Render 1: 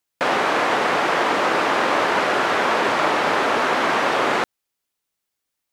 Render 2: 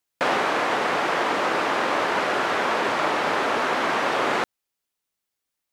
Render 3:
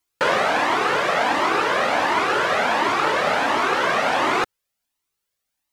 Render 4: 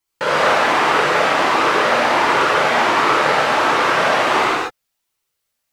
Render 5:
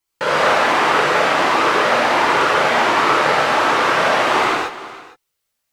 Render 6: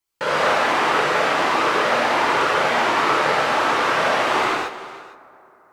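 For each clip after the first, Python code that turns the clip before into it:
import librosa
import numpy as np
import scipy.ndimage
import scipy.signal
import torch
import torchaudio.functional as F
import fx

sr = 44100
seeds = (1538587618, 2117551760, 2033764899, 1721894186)

y1 = fx.rider(x, sr, range_db=10, speed_s=0.5)
y1 = y1 * 10.0 ** (-3.5 / 20.0)
y2 = fx.comb_cascade(y1, sr, direction='rising', hz=1.4)
y2 = y2 * 10.0 ** (7.5 / 20.0)
y3 = fx.rev_gated(y2, sr, seeds[0], gate_ms=270, shape='flat', drr_db=-7.0)
y3 = y3 * 10.0 ** (-3.0 / 20.0)
y4 = fx.echo_multitap(y3, sr, ms=(308, 460), db=(-17.5, -19.5))
y5 = fx.rev_plate(y4, sr, seeds[1], rt60_s=3.9, hf_ratio=0.45, predelay_ms=0, drr_db=18.0)
y5 = y5 * 10.0 ** (-3.5 / 20.0)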